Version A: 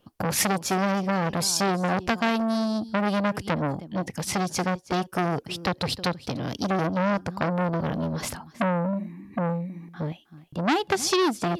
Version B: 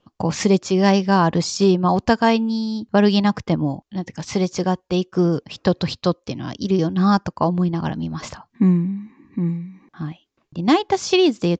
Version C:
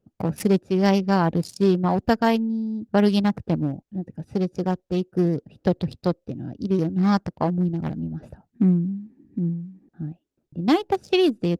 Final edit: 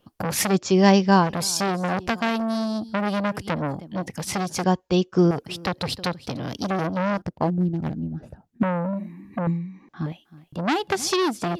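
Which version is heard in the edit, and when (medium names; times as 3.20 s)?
A
0.54–1.23 s: from B, crossfade 0.10 s
4.64–5.31 s: from B
7.22–8.63 s: from C
9.47–10.06 s: from B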